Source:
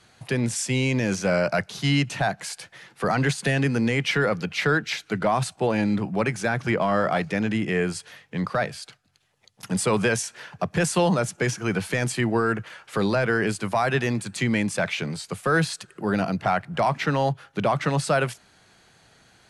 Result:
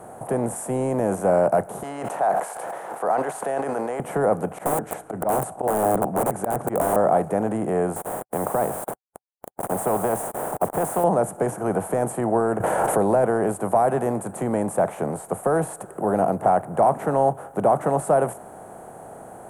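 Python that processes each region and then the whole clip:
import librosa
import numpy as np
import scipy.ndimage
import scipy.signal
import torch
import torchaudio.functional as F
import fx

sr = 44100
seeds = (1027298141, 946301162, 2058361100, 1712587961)

y = fx.chain(x, sr, fx.highpass(hz=760.0, slope=12),
    fx.high_shelf_res(hz=6600.0, db=-8.5, q=1.5),
    fx.sustainer(db_per_s=22.0), at=(1.83, 4.0))
y = fx.chain(y, sr, fx.lowpass(hz=10000.0, slope=12),
    fx.auto_swell(attack_ms=104.0),
    fx.overflow_wrap(gain_db=18.5), at=(4.52, 6.96))
y = fx.chain(y, sr, fx.lowpass(hz=2500.0, slope=6),
    fx.quant_dither(seeds[0], bits=8, dither='none'),
    fx.spectral_comp(ratio=2.0), at=(7.96, 11.04))
y = fx.chain(y, sr, fx.notch(hz=1200.0, q=7.0),
    fx.env_flatten(amount_pct=100), at=(12.6, 13.25))
y = fx.bin_compress(y, sr, power=0.6)
y = fx.curve_eq(y, sr, hz=(120.0, 760.0, 2300.0, 4800.0, 9000.0), db=(0, 13, -15, -25, 6))
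y = y * 10.0 ** (-8.5 / 20.0)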